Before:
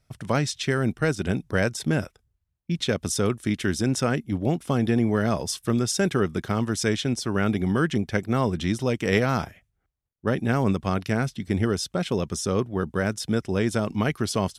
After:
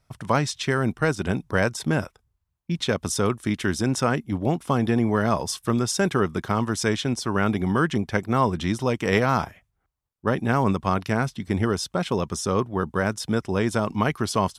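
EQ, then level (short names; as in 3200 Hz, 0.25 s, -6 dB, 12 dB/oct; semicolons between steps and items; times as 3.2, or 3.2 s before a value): bell 1000 Hz +8 dB 0.79 oct; 0.0 dB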